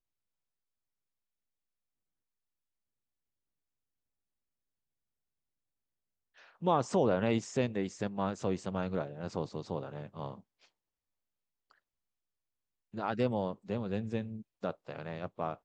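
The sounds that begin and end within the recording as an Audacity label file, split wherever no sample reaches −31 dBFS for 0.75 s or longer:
6.650000	10.290000	sound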